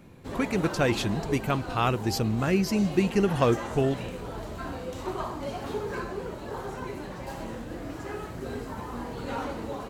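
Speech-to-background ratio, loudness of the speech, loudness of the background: 9.0 dB, -27.0 LUFS, -36.0 LUFS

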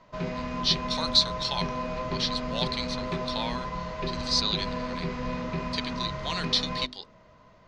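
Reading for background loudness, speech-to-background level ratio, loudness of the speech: -33.0 LUFS, 4.0 dB, -29.0 LUFS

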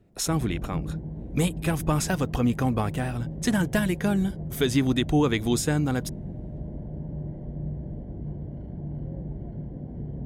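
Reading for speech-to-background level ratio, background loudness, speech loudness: 10.0 dB, -36.0 LUFS, -26.0 LUFS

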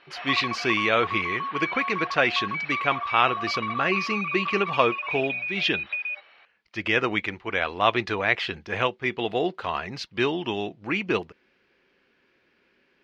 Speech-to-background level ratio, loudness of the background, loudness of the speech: 3.5 dB, -29.5 LUFS, -26.0 LUFS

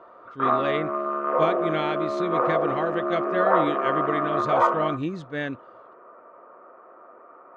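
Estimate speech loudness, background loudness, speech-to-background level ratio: -29.5 LUFS, -24.5 LUFS, -5.0 dB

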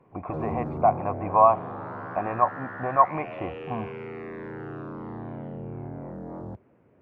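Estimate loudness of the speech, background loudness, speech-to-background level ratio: -25.5 LUFS, -37.0 LUFS, 11.5 dB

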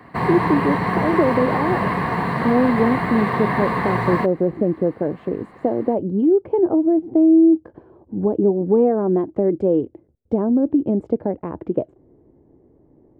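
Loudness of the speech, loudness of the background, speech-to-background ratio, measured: -20.0 LUFS, -22.0 LUFS, 2.0 dB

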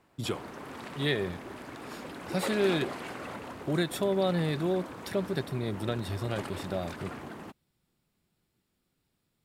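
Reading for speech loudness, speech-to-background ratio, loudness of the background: -32.0 LUFS, 9.0 dB, -41.0 LUFS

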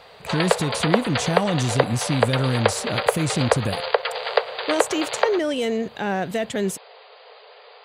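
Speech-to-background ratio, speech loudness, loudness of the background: 0.0 dB, -24.5 LUFS, -24.5 LUFS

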